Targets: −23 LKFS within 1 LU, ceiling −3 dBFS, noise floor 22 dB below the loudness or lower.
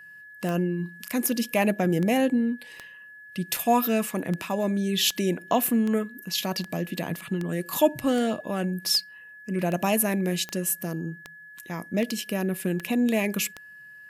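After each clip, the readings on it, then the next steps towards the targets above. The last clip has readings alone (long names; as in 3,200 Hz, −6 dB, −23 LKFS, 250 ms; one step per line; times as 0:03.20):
number of clicks 18; interfering tone 1,700 Hz; level of the tone −44 dBFS; integrated loudness −26.0 LKFS; sample peak −8.5 dBFS; target loudness −23.0 LKFS
→ click removal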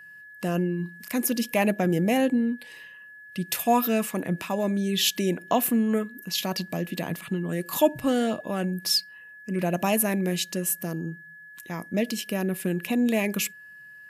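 number of clicks 0; interfering tone 1,700 Hz; level of the tone −44 dBFS
→ notch filter 1,700 Hz, Q 30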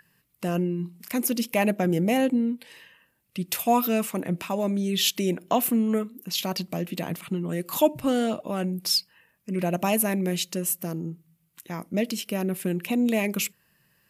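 interfering tone none found; integrated loudness −26.0 LKFS; sample peak −8.5 dBFS; target loudness −23.0 LKFS
→ level +3 dB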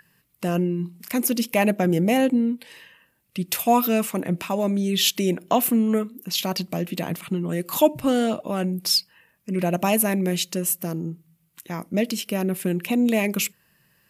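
integrated loudness −23.0 LKFS; sample peak −5.5 dBFS; background noise floor −65 dBFS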